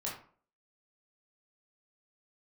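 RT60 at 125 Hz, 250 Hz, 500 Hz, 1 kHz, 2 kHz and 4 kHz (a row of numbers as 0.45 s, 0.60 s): 0.45 s, 0.50 s, 0.50 s, 0.45 s, 0.35 s, 0.25 s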